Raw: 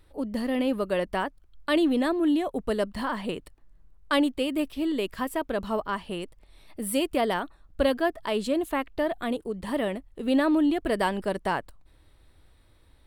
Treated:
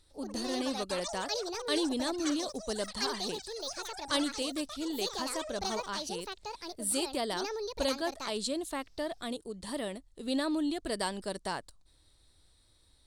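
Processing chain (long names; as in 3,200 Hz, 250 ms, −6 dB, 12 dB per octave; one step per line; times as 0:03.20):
delay with pitch and tempo change per echo 100 ms, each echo +6 semitones, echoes 3, each echo −6 dB
flat-topped bell 6,000 Hz +14.5 dB
level −9 dB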